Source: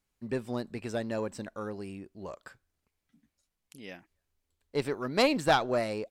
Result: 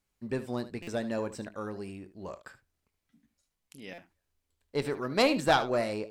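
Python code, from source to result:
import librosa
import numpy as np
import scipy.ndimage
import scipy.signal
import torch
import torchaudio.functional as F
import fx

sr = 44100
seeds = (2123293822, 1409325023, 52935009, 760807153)

y = fx.room_early_taps(x, sr, ms=(22, 75), db=(-14.5, -14.0))
y = fx.buffer_glitch(y, sr, at_s=(0.82, 3.93), block=256, repeats=8)
y = fx.end_taper(y, sr, db_per_s=460.0)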